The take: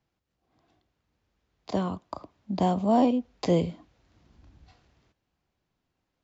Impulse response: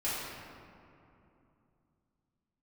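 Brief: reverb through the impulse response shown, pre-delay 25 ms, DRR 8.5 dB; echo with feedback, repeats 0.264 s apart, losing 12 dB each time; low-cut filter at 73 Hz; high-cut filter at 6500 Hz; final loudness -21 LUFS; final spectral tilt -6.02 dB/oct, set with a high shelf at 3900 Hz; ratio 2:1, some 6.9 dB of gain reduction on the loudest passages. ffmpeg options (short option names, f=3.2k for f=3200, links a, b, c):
-filter_complex "[0:a]highpass=73,lowpass=6.5k,highshelf=f=3.9k:g=9,acompressor=threshold=-30dB:ratio=2,aecho=1:1:264|528|792:0.251|0.0628|0.0157,asplit=2[a][b];[1:a]atrim=start_sample=2205,adelay=25[c];[b][c]afir=irnorm=-1:irlink=0,volume=-15.5dB[d];[a][d]amix=inputs=2:normalize=0,volume=11.5dB"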